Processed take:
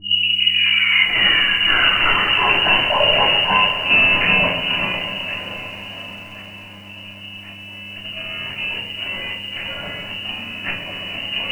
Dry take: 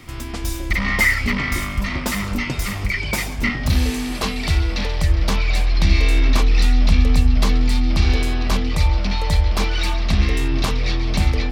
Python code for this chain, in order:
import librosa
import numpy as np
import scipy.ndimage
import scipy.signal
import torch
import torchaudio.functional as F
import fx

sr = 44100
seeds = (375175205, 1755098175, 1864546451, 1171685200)

y = fx.tape_start_head(x, sr, length_s=2.63)
y = fx.peak_eq(y, sr, hz=300.0, db=-2.5, octaves=0.33)
y = fx.hum_notches(y, sr, base_hz=60, count=5)
y = fx.over_compress(y, sr, threshold_db=-23.0, ratio=-0.5)
y = fx.freq_invert(y, sr, carrier_hz=2900)
y = fx.dmg_buzz(y, sr, base_hz=100.0, harmonics=3, level_db=-47.0, tilt_db=-5, odd_only=False)
y = fx.echo_diffused(y, sr, ms=695, feedback_pct=56, wet_db=-14)
y = fx.room_shoebox(y, sr, seeds[0], volume_m3=340.0, walls='furnished', distance_m=3.1)
y = fx.echo_crushed(y, sr, ms=133, feedback_pct=80, bits=7, wet_db=-14)
y = y * 10.0 ** (-1.5 / 20.0)